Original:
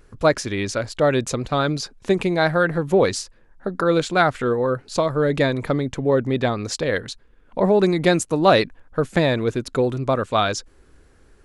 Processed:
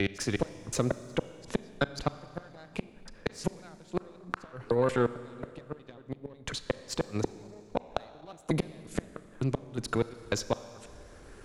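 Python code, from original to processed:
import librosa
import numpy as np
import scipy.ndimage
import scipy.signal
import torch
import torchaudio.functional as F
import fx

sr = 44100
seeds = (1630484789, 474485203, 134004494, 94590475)

y = fx.block_reorder(x, sr, ms=181.0, group=4)
y = fx.cheby_harmonics(y, sr, harmonics=(3, 4, 8), levels_db=(-17, -37, -32), full_scale_db=-2.5)
y = fx.gate_flip(y, sr, shuts_db=-15.0, range_db=-36)
y = fx.rev_schroeder(y, sr, rt60_s=1.6, comb_ms=29, drr_db=14.5)
y = fx.band_squash(y, sr, depth_pct=40)
y = F.gain(torch.from_numpy(y), 1.5).numpy()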